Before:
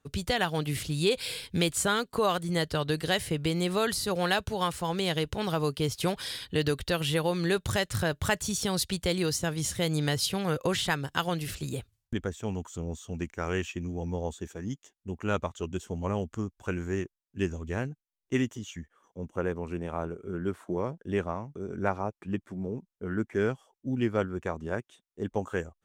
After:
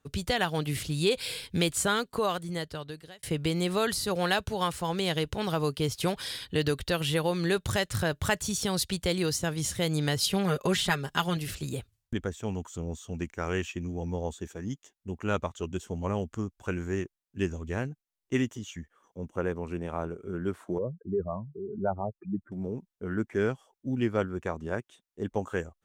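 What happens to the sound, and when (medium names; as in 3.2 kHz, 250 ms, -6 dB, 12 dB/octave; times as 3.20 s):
1.98–3.23 s: fade out
10.20–11.37 s: comb 4.9 ms, depth 62%
20.78–22.52 s: spectral contrast enhancement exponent 2.8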